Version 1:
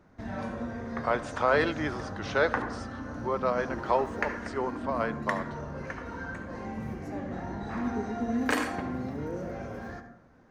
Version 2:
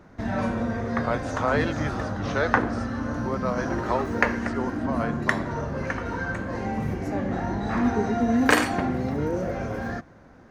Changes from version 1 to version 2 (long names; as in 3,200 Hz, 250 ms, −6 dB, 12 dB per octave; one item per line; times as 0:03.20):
background +11.5 dB
reverb: off